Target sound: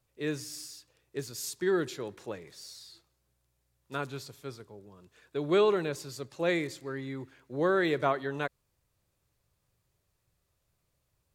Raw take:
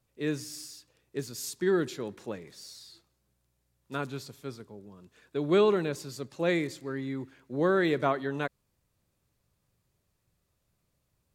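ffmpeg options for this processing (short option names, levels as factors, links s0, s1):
-af "equalizer=f=220:w=1.7:g=-7"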